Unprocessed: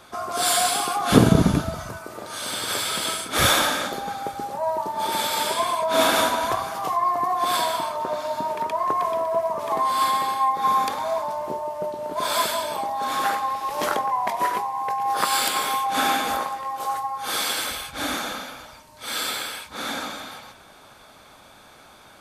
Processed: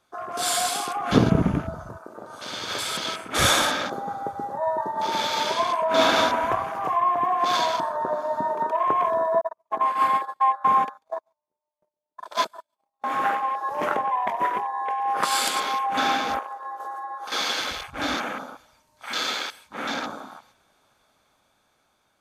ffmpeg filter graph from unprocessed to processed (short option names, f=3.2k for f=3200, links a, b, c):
-filter_complex "[0:a]asettb=1/sr,asplit=3[a][b][c];[a]atrim=end=9.414[d];[b]atrim=start=9.41:end=13.04,asetpts=PTS-STARTPTS,afade=t=in:d=0.004:c=qsin,afade=t=out:st=3.626:d=0.004:c=qsin,agate=range=-44dB:threshold=-23dB:ratio=16:release=100:detection=peak,aecho=1:1:142:0.0668,atrim=end_sample=160083[e];[c]atrim=start=13.036[f];[d][e]acrossfade=d=0.004:c1=hsin:c2=qsin[g];[g][f]acrossfade=d=0.004:c1=qsin:c2=hsin,asettb=1/sr,asplit=3[h][i][j];[h]atrim=end=16.394[k];[i]atrim=start=16.39:end=17.32,asetpts=PTS-STARTPTS,afade=t=in:d=0.004:c=qsin,afade=t=out:st=0.926:d=0.004:c=qsin,highpass=f=360:p=1,agate=range=-33dB:threshold=-31dB:ratio=3:release=100:detection=peak,acompressor=threshold=-29dB:ratio=6:attack=3.2:release=140:knee=1:detection=peak[l];[j]atrim=start=17.316[m];[k][l]acrossfade=d=0.004:c1=hsin:c2=qsin[n];[n][m]acrossfade=d=0.004:c1=qsin:c2=hsin,afwtdn=0.0224,equalizer=f=6.4k:t=o:w=0.31:g=4,dynaudnorm=f=480:g=7:m=5dB,volume=-3.5dB"